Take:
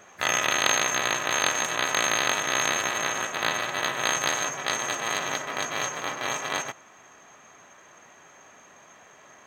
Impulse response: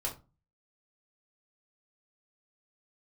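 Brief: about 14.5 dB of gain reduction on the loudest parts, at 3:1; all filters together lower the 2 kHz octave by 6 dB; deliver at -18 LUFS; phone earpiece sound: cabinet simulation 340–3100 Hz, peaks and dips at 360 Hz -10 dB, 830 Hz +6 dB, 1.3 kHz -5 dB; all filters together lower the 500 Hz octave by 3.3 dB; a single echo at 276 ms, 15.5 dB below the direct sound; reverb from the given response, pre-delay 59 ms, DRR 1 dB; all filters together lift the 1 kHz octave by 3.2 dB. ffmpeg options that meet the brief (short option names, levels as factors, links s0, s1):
-filter_complex "[0:a]equalizer=f=500:t=o:g=-5.5,equalizer=f=1000:t=o:g=6.5,equalizer=f=2000:t=o:g=-8,acompressor=threshold=0.00891:ratio=3,aecho=1:1:276:0.168,asplit=2[s0][s1];[1:a]atrim=start_sample=2205,adelay=59[s2];[s1][s2]afir=irnorm=-1:irlink=0,volume=0.668[s3];[s0][s3]amix=inputs=2:normalize=0,highpass=340,equalizer=f=360:t=q:w=4:g=-10,equalizer=f=830:t=q:w=4:g=6,equalizer=f=1300:t=q:w=4:g=-5,lowpass=f=3100:w=0.5412,lowpass=f=3100:w=1.3066,volume=12.6"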